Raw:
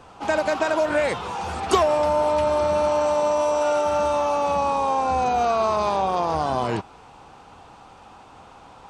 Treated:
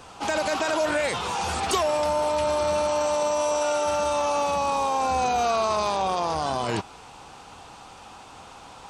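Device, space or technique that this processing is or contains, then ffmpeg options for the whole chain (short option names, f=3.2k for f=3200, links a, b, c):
clipper into limiter: -af "highshelf=f=2.8k:g=11,asoftclip=type=hard:threshold=-9dB,alimiter=limit=-16dB:level=0:latency=1:release=19"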